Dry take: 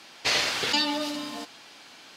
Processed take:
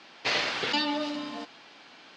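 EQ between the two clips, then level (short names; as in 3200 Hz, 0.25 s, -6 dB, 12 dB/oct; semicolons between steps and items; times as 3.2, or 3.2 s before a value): HPF 120 Hz 12 dB/oct; air absorption 150 m; 0.0 dB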